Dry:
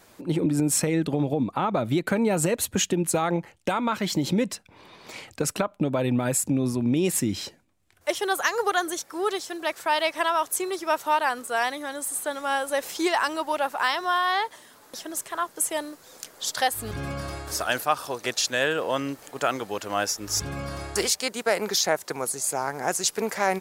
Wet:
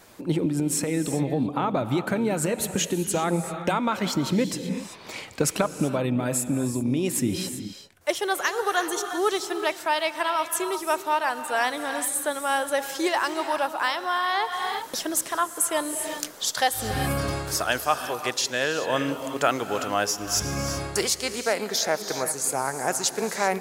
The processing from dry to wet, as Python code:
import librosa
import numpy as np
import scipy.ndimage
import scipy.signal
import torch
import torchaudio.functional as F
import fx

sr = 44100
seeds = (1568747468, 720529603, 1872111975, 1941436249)

y = fx.rev_gated(x, sr, seeds[0], gate_ms=410, shape='rising', drr_db=9.5)
y = fx.rider(y, sr, range_db=10, speed_s=0.5)